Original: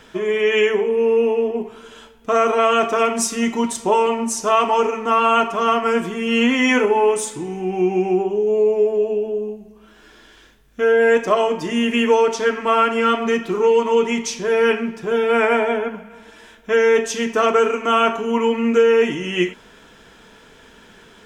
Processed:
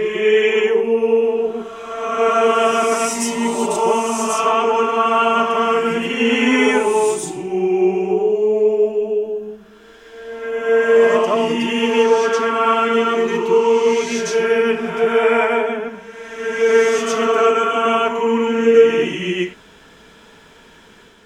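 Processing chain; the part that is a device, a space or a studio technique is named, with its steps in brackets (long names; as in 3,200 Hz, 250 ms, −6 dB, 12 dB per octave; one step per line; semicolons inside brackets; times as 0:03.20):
reverse reverb (reversed playback; convolution reverb RT60 1.6 s, pre-delay 93 ms, DRR −1.5 dB; reversed playback)
level −2.5 dB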